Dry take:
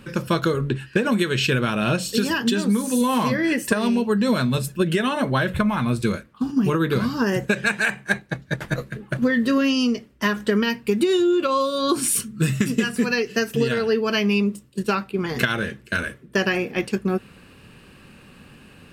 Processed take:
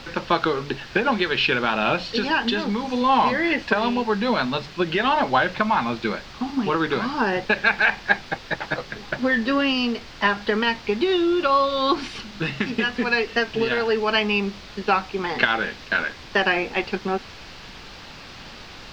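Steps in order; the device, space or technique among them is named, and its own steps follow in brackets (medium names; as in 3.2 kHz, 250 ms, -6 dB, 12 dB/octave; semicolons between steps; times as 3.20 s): horn gramophone (band-pass 240–3300 Hz; peaking EQ 820 Hz +12 dB 0.45 oct; wow and flutter; pink noise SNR 18 dB); FFT filter 570 Hz 0 dB, 4.8 kHz +8 dB, 9.7 kHz -19 dB; trim -1.5 dB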